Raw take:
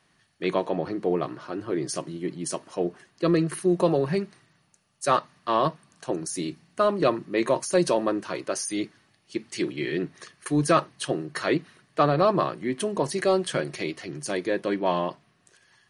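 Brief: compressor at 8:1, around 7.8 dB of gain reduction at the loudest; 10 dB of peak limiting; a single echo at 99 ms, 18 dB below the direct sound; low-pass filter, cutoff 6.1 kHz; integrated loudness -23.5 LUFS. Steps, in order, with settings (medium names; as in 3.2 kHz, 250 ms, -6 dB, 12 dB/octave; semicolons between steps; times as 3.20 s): low-pass 6.1 kHz; compression 8:1, threshold -24 dBFS; peak limiter -23.5 dBFS; delay 99 ms -18 dB; trim +11.5 dB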